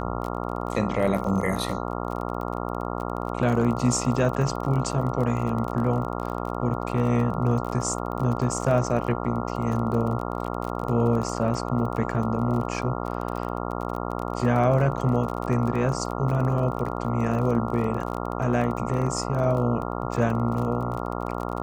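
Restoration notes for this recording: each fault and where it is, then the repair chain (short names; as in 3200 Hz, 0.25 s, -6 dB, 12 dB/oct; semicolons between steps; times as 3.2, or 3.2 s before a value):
buzz 60 Hz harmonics 23 -30 dBFS
crackle 31/s -30 dBFS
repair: de-click; de-hum 60 Hz, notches 23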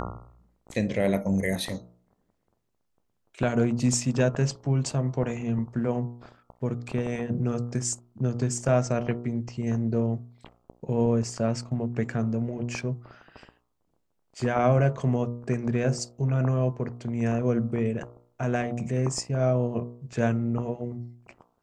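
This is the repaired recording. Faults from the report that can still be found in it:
none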